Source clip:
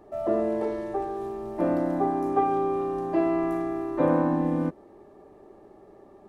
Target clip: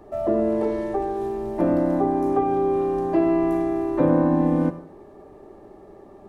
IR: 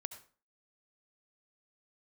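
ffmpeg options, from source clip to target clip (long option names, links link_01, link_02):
-filter_complex "[0:a]asplit=2[link_01][link_02];[1:a]atrim=start_sample=2205,lowshelf=frequency=130:gain=7[link_03];[link_02][link_03]afir=irnorm=-1:irlink=0,volume=8.5dB[link_04];[link_01][link_04]amix=inputs=2:normalize=0,acrossover=split=440[link_05][link_06];[link_06]acompressor=threshold=-21dB:ratio=3[link_07];[link_05][link_07]amix=inputs=2:normalize=0,volume=-4.5dB"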